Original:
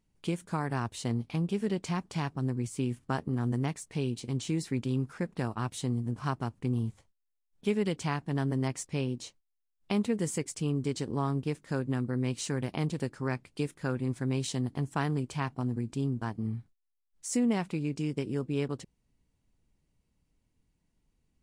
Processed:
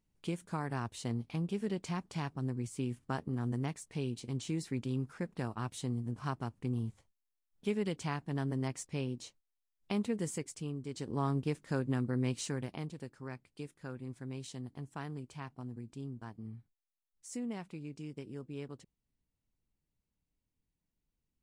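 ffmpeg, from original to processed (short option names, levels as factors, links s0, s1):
-af "volume=1.68,afade=t=out:st=10.24:d=0.62:silence=0.473151,afade=t=in:st=10.86:d=0.4:silence=0.334965,afade=t=out:st=12.27:d=0.64:silence=0.316228"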